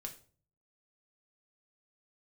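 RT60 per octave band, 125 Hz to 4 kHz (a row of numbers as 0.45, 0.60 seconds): 0.85, 0.55, 0.50, 0.40, 0.35, 0.35 seconds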